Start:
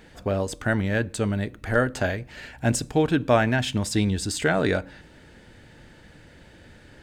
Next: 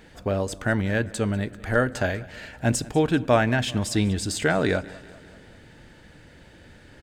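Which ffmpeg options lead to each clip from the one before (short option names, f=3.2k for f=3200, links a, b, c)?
-af "aecho=1:1:194|388|582|776|970:0.0891|0.0526|0.031|0.0183|0.0108"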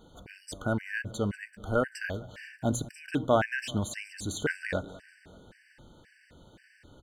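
-af "bandreject=f=60:t=h:w=6,bandreject=f=120:t=h:w=6,afftfilt=real='re*gt(sin(2*PI*1.9*pts/sr)*(1-2*mod(floor(b*sr/1024/1500),2)),0)':imag='im*gt(sin(2*PI*1.9*pts/sr)*(1-2*mod(floor(b*sr/1024/1500),2)),0)':win_size=1024:overlap=0.75,volume=-4dB"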